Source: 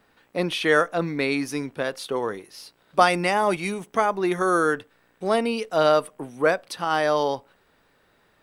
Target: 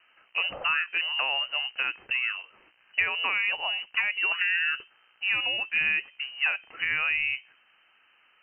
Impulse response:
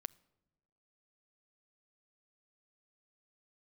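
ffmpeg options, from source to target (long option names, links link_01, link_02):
-filter_complex "[0:a]lowpass=frequency=2600:width_type=q:width=0.5098,lowpass=frequency=2600:width_type=q:width=0.6013,lowpass=frequency=2600:width_type=q:width=0.9,lowpass=frequency=2600:width_type=q:width=2.563,afreqshift=-3100,acrossover=split=660|2200[link_01][link_02][link_03];[link_01]acompressor=threshold=-45dB:ratio=4[link_04];[link_02]acompressor=threshold=-30dB:ratio=4[link_05];[link_03]acompressor=threshold=-29dB:ratio=4[link_06];[link_04][link_05][link_06]amix=inputs=3:normalize=0"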